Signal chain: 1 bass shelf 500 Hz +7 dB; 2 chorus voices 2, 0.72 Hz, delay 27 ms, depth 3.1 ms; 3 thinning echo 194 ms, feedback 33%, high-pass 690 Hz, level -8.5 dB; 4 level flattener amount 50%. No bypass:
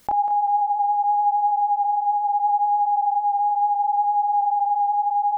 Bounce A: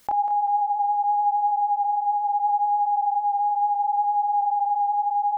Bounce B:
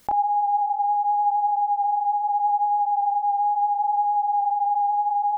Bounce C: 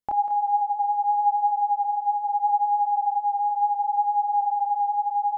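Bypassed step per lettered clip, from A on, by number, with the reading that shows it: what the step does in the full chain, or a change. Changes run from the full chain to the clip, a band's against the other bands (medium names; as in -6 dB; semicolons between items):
1, loudness change -2.0 LU; 3, loudness change -1.5 LU; 4, crest factor change +2.5 dB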